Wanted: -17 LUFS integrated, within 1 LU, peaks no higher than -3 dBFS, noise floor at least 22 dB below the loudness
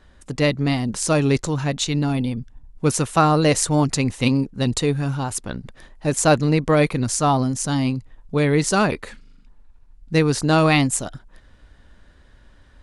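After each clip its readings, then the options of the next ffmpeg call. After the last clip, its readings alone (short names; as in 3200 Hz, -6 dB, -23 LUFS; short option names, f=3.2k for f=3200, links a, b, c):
loudness -20.0 LUFS; peak -1.5 dBFS; loudness target -17.0 LUFS
-> -af "volume=3dB,alimiter=limit=-3dB:level=0:latency=1"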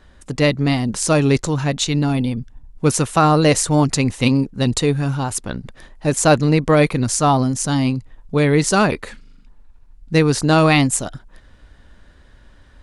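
loudness -17.5 LUFS; peak -3.0 dBFS; noise floor -48 dBFS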